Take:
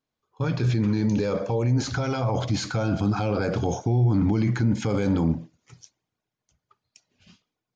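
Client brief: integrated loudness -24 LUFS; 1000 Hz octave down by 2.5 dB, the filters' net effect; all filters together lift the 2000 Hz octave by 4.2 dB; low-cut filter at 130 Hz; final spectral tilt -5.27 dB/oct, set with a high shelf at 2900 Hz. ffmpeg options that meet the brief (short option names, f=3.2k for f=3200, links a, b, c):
-af "highpass=130,equalizer=f=1k:t=o:g=-6.5,equalizer=f=2k:t=o:g=5.5,highshelf=f=2.9k:g=8,volume=1.5dB"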